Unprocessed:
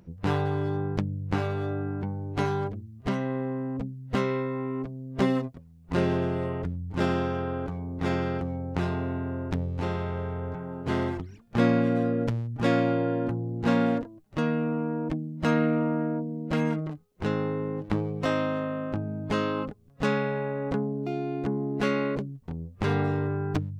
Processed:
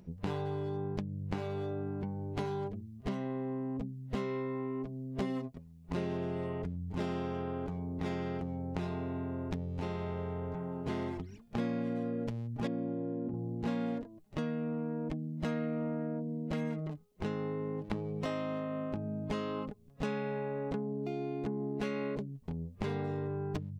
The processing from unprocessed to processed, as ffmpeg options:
-filter_complex "[0:a]asettb=1/sr,asplit=3[a][b][c];[a]atrim=end=12.674[d];[b]atrim=start=12.67:end=13.34,asetpts=PTS-STARTPTS,afade=t=in:d=0.004:c=qsin,afade=t=out:st=0.666:d=0.004:c=qsin,bandpass=f=230:t=q:w=0.9[e];[c]atrim=start=13.336[f];[d][e]acrossfade=d=0.004:c1=hsin:c2=qsin[g];[g][f]acrossfade=d=0.004:c1=qsin:c2=hsin,equalizer=f=1.4k:w=1.9:g=-5,aecho=1:1:4.8:0.31,acompressor=threshold=-33dB:ratio=3,volume=-1.5dB"

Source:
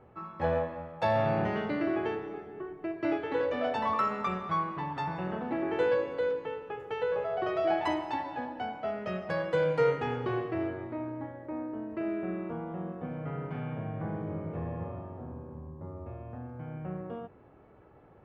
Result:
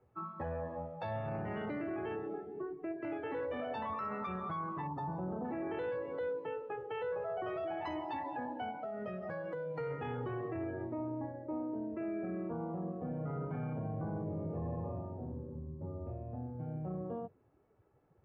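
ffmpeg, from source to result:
-filter_complex "[0:a]asettb=1/sr,asplit=3[a][b][c];[a]atrim=end=4.874[d];[b]atrim=start=4.87:end=5.45,asetpts=PTS-STARTPTS,afade=t=in:d=0.004:c=qsin,afade=t=out:st=0.576:d=0.004:c=qsin,equalizer=f=2.6k:t=o:w=1.6:g=-14.5[e];[c]atrim=start=5.446[f];[d][e]acrossfade=d=0.004:c1=hsin:c2=qsin[g];[g][f]acrossfade=d=0.004:c1=qsin:c2=hsin,asettb=1/sr,asplit=3[h][i][j];[h]atrim=end=8.704[k];[i]atrim=start=8.7:end=9.78,asetpts=PTS-STARTPTS,afade=t=in:d=0.004:c=qsin,afade=t=out:st=1.076:d=0.004:c=qsin,acompressor=threshold=-36dB:ratio=10:attack=3.2:release=140:knee=1:detection=peak[l];[j]atrim=start=9.776[m];[k][l]acrossfade=d=0.004:c1=hsin:c2=qsin[n];[n][m]acrossfade=d=0.004:c1=qsin:c2=hsin,afftdn=nr=16:nf=-42,acrossover=split=130[o][p];[p]acompressor=threshold=-34dB:ratio=4[q];[o][q]amix=inputs=2:normalize=0,alimiter=level_in=7.5dB:limit=-24dB:level=0:latency=1:release=12,volume=-7.5dB"

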